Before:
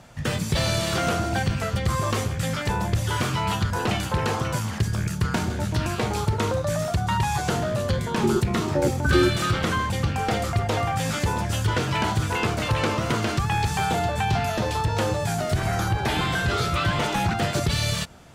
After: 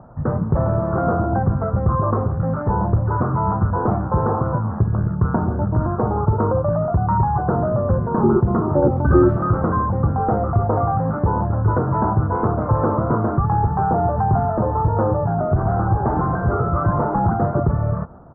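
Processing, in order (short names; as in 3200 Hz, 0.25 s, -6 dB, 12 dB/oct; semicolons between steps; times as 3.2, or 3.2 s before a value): steep low-pass 1300 Hz 48 dB/oct; speakerphone echo 0.14 s, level -24 dB; gain +6 dB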